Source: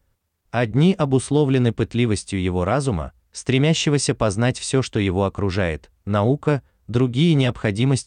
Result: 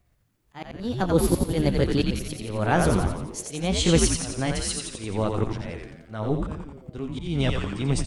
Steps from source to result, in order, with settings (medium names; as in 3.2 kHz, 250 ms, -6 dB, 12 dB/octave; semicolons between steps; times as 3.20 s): pitch bend over the whole clip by +4.5 st ending unshifted; slow attack 471 ms; frequency-shifting echo 87 ms, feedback 59%, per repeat -110 Hz, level -3.5 dB